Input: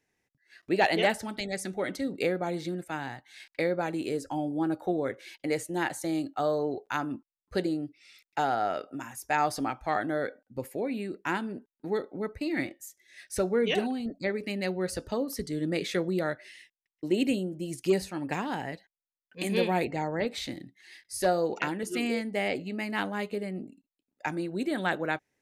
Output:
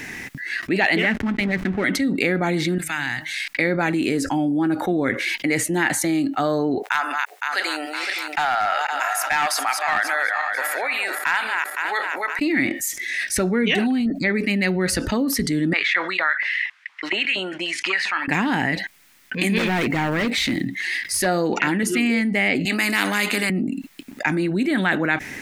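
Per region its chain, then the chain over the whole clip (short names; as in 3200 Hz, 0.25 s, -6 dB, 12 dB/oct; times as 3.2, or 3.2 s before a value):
0.98–1.84 LPF 2500 Hz + dynamic EQ 780 Hz, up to -8 dB, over -40 dBFS, Q 1.3 + backlash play -40 dBFS
2.78–3.48 passive tone stack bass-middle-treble 5-5-5 + de-hum 155.2 Hz, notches 4
6.82–12.39 regenerating reverse delay 0.257 s, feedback 52%, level -10 dB + HPF 710 Hz 24 dB/oct + overloaded stage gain 24 dB
15.73–18.28 LPF 3500 Hz + LFO high-pass saw up 4.3 Hz 890–2000 Hz
19.58–21.21 block floating point 7-bit + hard clip -30 dBFS
22.65–23.5 HPF 220 Hz 24 dB/oct + notch 3200 Hz + spectral compressor 2:1
whole clip: graphic EQ 250/500/2000 Hz +7/-6/+9 dB; fast leveller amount 70%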